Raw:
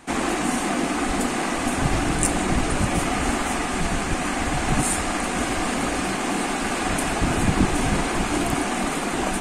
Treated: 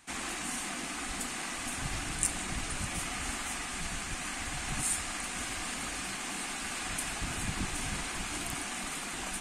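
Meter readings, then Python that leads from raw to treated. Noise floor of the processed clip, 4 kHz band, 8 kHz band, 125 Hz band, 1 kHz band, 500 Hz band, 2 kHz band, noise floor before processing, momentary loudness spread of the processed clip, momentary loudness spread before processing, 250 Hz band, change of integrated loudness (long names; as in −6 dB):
−39 dBFS, −7.5 dB, −6.0 dB, −15.0 dB, −15.5 dB, −19.5 dB, −10.0 dB, −26 dBFS, 5 LU, 3 LU, −18.5 dB, −11.5 dB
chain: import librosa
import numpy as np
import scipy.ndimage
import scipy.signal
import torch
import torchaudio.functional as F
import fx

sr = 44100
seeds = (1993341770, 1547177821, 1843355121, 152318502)

y = fx.tone_stack(x, sr, knobs='5-5-5')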